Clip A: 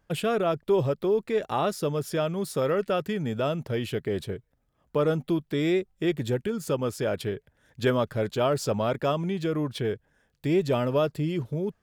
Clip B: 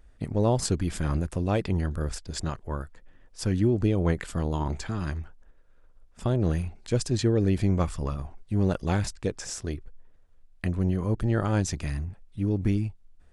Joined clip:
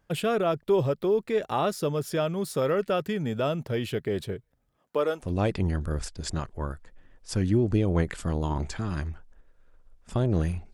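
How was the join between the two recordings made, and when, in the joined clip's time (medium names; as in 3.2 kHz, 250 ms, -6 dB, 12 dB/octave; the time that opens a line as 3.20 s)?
clip A
4.77–5.33 s: high-pass 190 Hz -> 810 Hz
5.25 s: go over to clip B from 1.35 s, crossfade 0.16 s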